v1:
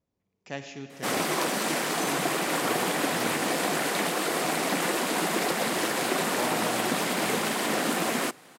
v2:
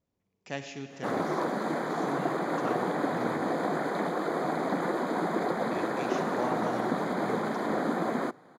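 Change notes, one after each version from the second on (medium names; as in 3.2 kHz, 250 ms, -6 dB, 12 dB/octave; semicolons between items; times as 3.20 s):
background: add boxcar filter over 16 samples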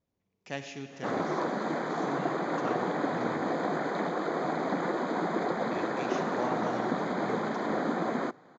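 master: add elliptic low-pass 6.8 kHz, stop band 60 dB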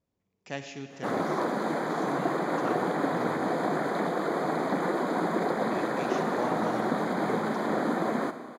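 background: send on; master: remove elliptic low-pass 6.8 kHz, stop band 60 dB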